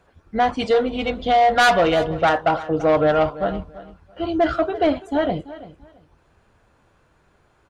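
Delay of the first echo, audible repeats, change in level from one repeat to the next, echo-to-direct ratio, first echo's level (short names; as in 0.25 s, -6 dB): 0.336 s, 2, -13.0 dB, -16.5 dB, -16.5 dB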